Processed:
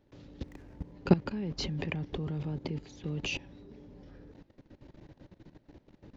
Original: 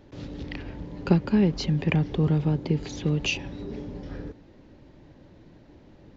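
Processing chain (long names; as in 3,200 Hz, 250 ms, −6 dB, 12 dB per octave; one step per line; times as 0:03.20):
0:00.43–0:00.92: running median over 15 samples
output level in coarse steps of 17 dB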